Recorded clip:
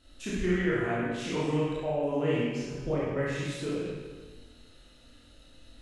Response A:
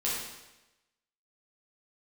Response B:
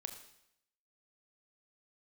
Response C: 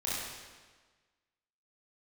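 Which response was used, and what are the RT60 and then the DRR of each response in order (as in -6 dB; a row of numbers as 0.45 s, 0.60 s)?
C; 1.0 s, 0.75 s, 1.4 s; -8.0 dB, 5.5 dB, -8.5 dB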